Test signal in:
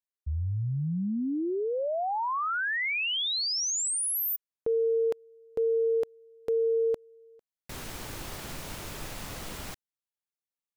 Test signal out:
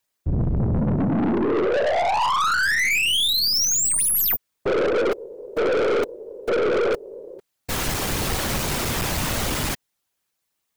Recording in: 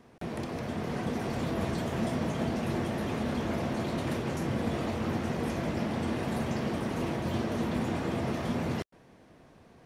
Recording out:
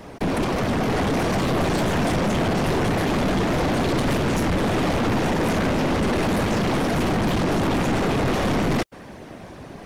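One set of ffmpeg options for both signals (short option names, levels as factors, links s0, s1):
-af "apsyclip=15.8,afftfilt=real='hypot(re,im)*cos(2*PI*random(0))':imag='hypot(re,im)*sin(2*PI*random(1))':win_size=512:overlap=0.75,aeval=exprs='(tanh(8.91*val(0)+0.25)-tanh(0.25))/8.91':c=same"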